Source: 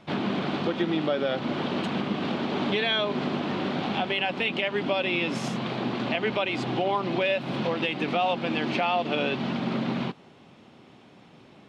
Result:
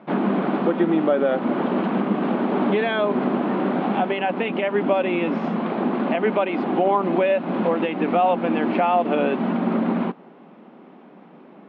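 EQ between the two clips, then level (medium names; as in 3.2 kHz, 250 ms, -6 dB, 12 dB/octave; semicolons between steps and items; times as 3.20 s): brick-wall FIR high-pass 160 Hz; low-pass 1.5 kHz 12 dB/octave; distance through air 70 m; +7.5 dB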